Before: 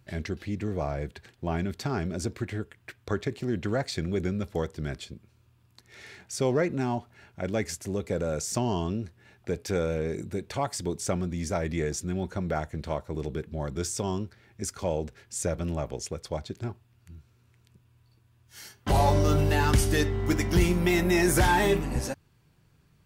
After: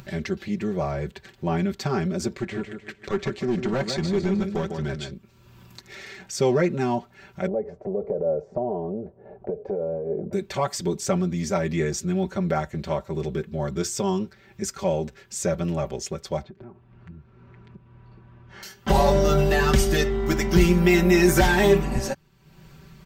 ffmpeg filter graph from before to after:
-filter_complex "[0:a]asettb=1/sr,asplit=3[a][b][c];[a]atrim=end=2.344[d];[b]atrim=start=2.34:end=5.12,asetpts=PTS-STARTPTS,afade=t=in:d=0.004:c=qsin,afade=t=out:st=2.776:d=0.004:c=qsin,lowpass=9.4k,aecho=1:1:152|304|456|608:0.398|0.139|0.0488|0.0171,atrim=end_sample=122598,asoftclip=type=hard:threshold=-23.5dB[e];[c]atrim=start=5.116[f];[d][e]acrossfade=d=0.004:c1=hsin:c2=qsin[g];[g][f]acrossfade=d=0.004:c1=qsin:c2=hsin,asettb=1/sr,asplit=3[h][i][j];[h]atrim=end=7.474[k];[i]atrim=start=7.47:end=10.33,asetpts=PTS-STARTPTS,afade=t=in:d=0.004:c=qsin,afade=t=out:st=2.856:d=0.004:c=qsin,equalizer=f=460:t=o:w=0.24:g=13,acompressor=threshold=-31dB:ratio=12:attack=3.2:release=140:knee=1:detection=peak,lowpass=f=660:t=q:w=4.7[l];[j]atrim=start=10.326[m];[k][l]acrossfade=d=0.004:c1=hsin:c2=qsin[n];[n][m]acrossfade=d=0.004:c1=qsin:c2=hsin,asettb=1/sr,asplit=3[o][p][q];[o]atrim=end=16.434[r];[p]atrim=start=16.43:end=18.63,asetpts=PTS-STARTPTS,afade=t=in:d=0.004:c=qsin,afade=t=out:st=2.196:d=0.004:c=qsin,lowpass=1.5k,acompressor=threshold=-42dB:ratio=10:attack=3.2:release=140:knee=1:detection=peak[s];[q]atrim=start=18.626[t];[r][s]acrossfade=d=0.004:c1=hsin:c2=qsin[u];[u][t]acrossfade=d=0.004:c1=qsin:c2=hsin,equalizer=f=10k:t=o:w=0.27:g=-13.5,aecho=1:1:5.2:0.81,acompressor=mode=upward:threshold=-38dB:ratio=2.5,volume=2.5dB"

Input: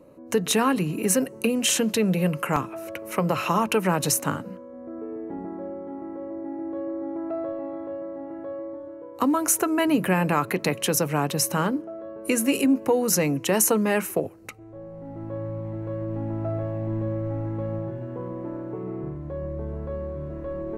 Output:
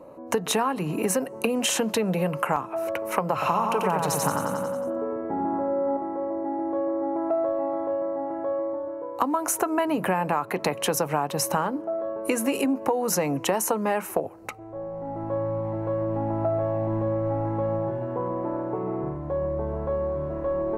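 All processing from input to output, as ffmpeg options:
-filter_complex "[0:a]asettb=1/sr,asplit=3[a][b][c];[a]atrim=end=3.334[d];[b]atrim=start=3.33:end=5.97,asetpts=PTS-STARTPTS,afade=t=in:d=0.004:c=qsin,afade=t=out:st=2.636:d=0.004:c=qsin,equalizer=f=120:t=o:w=2.2:g=4,aecho=1:1:90|180|270|360|450|540|630|720:0.631|0.366|0.212|0.123|0.0714|0.0414|0.024|0.0139,atrim=end_sample=116424[e];[c]atrim=start=5.966[f];[d][e]acrossfade=d=0.004:c1=hsin:c2=qsin[g];[g][f]acrossfade=d=0.004:c1=qsin:c2=hsin,equalizer=f=840:t=o:w=1.4:g=12.5,acompressor=threshold=-21dB:ratio=6"

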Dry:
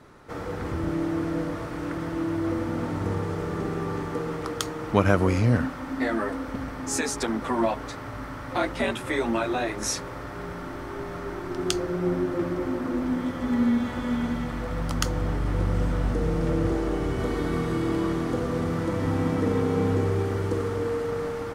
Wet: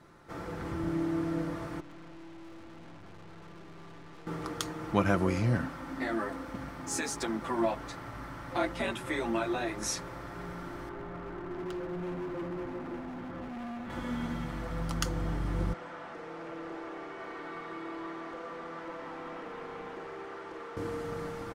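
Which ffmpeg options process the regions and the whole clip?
-filter_complex "[0:a]asettb=1/sr,asplit=3[a][b][c];[a]atrim=end=1.804[d];[b]atrim=start=1.8:end=4.27,asetpts=PTS-STARTPTS,afade=t=in:d=0.004:c=qsin,afade=t=out:st=2.466:d=0.004:c=qsin,lowpass=3k,aeval=exprs='(tanh(158*val(0)+0.75)-tanh(0.75))/158':c=same[e];[c]atrim=start=4.266[f];[d][e]acrossfade=d=0.004:c1=hsin:c2=qsin[g];[g][f]acrossfade=d=0.004:c1=qsin:c2=hsin,asettb=1/sr,asplit=3[h][i][j];[h]atrim=end=6.144[k];[i]atrim=start=6.14:end=7.66,asetpts=PTS-STARTPTS,afade=t=in:d=0.004:c=qsin,afade=t=out:st=1.516:d=0.004:c=qsin,highpass=44,aeval=exprs='sgn(val(0))*max(abs(val(0))-0.00211,0)':c=same[l];[j]atrim=start=7.656[m];[k][l]acrossfade=d=0.004:c1=hsin:c2=qsin[n];[n][m]acrossfade=d=0.004:c1=qsin:c2=hsin,asettb=1/sr,asplit=3[o][p][q];[o]atrim=end=10.894[r];[p]atrim=start=10.89:end=13.9,asetpts=PTS-STARTPTS,afade=t=in:d=0.004:c=qsin,afade=t=out:st=3.006:d=0.004:c=qsin,lowpass=1.9k,asoftclip=type=hard:threshold=-30.5dB[s];[q]atrim=start=13.896[t];[r][s]acrossfade=d=0.004:c1=hsin:c2=qsin[u];[u][t]acrossfade=d=0.004:c1=qsin:c2=hsin,asettb=1/sr,asplit=3[v][w][x];[v]atrim=end=15.734[y];[w]atrim=start=15.73:end=20.77,asetpts=PTS-STARTPTS,afade=t=in:d=0.004:c=qsin,afade=t=out:st=5.036:d=0.004:c=qsin,highpass=570,lowpass=6.2k,asoftclip=type=hard:threshold=-31dB,acrossover=split=2800[z][aa];[aa]acompressor=threshold=-59dB:ratio=4:attack=1:release=60[ab];[z][ab]amix=inputs=2:normalize=0[ac];[x]atrim=start=20.766[ad];[y][ac]acrossfade=d=0.004:c1=hsin:c2=qsin[ae];[ae][ad]acrossfade=d=0.004:c1=qsin:c2=hsin,bandreject=f=480:w=12,aecho=1:1:5.9:0.38,volume=-6dB"

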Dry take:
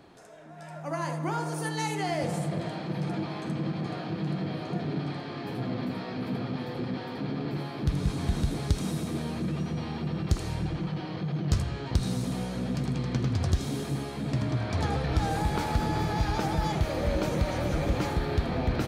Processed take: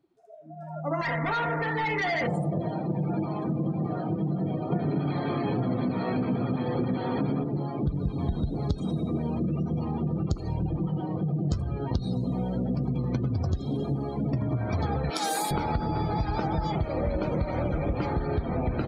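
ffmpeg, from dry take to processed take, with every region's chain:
-filter_complex "[0:a]asettb=1/sr,asplit=3[a][b][c];[a]atrim=end=1.014[d];[b]atrim=start=1.01:end=2.27,asetpts=PTS-STARTPTS,afade=t=in:d=0.004:c=qsin,afade=t=out:st=1.256:d=0.004:c=qsin,lowpass=f=1.9k:t=q:w=7.7,aecho=1:1:4.3:0.83,atrim=end_sample=55566,asoftclip=type=hard:threshold=-30dB[e];[c]atrim=start=2.266[f];[d][e]acrossfade=d=0.004:c1=hsin:c2=qsin[g];[g][f]acrossfade=d=0.004:c1=qsin:c2=hsin,asettb=1/sr,asplit=3[h][i][j];[h]atrim=end=4.724[k];[i]atrim=start=4.72:end=7.44,asetpts=PTS-STARTPTS,afade=t=in:d=0.004:c=qsin,afade=t=out:st=2.716:d=0.004:c=qsin,equalizer=f=7.5k:t=o:w=0.4:g=-9.5,acontrast=38[l];[j]atrim=start=7.436[m];[k][l]acrossfade=d=0.004:c1=hsin:c2=qsin[n];[n][m]acrossfade=d=0.004:c1=qsin:c2=hsin,asettb=1/sr,asplit=3[o][p][q];[o]atrim=end=15.104[r];[p]atrim=start=15.1:end=15.51,asetpts=PTS-STARTPTS,afade=t=in:d=0.004:c=qsin,afade=t=out:st=0.406:d=0.004:c=qsin,highpass=f=200:w=0.5412,highpass=f=200:w=1.3066,aemphasis=mode=production:type=riaa[s];[q]atrim=start=15.506[t];[r][s]acrossfade=d=0.004:c1=hsin:c2=qsin[u];[u][t]acrossfade=d=0.004:c1=qsin:c2=hsin,afftdn=nr=30:nf=-38,acompressor=threshold=-30dB:ratio=6,bandreject=f=1.7k:w=12,volume=6dB"

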